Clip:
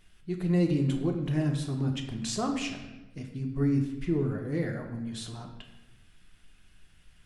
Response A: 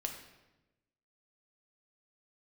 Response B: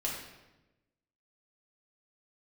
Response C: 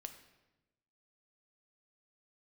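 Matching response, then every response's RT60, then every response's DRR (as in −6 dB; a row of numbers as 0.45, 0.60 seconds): A; 1.1, 1.1, 1.1 seconds; 2.5, −4.5, 6.5 decibels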